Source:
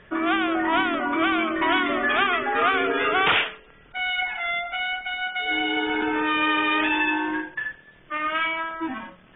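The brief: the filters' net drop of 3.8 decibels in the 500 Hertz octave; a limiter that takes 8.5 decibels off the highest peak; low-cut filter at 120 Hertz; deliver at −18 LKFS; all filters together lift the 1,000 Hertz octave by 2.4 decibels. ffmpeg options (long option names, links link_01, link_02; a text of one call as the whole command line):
ffmpeg -i in.wav -af "highpass=120,equalizer=frequency=500:width_type=o:gain=-7.5,equalizer=frequency=1000:width_type=o:gain=5,volume=6.5dB,alimiter=limit=-9dB:level=0:latency=1" out.wav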